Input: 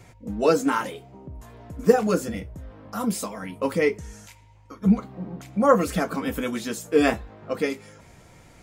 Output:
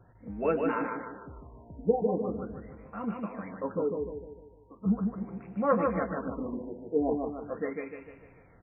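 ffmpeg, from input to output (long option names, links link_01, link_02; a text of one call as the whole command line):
ffmpeg -i in.wav -af "aecho=1:1:150|300|450|600|750|900:0.631|0.29|0.134|0.0614|0.0283|0.013,afftfilt=real='re*lt(b*sr/1024,950*pow(2900/950,0.5+0.5*sin(2*PI*0.4*pts/sr)))':imag='im*lt(b*sr/1024,950*pow(2900/950,0.5+0.5*sin(2*PI*0.4*pts/sr)))':win_size=1024:overlap=0.75,volume=-8.5dB" out.wav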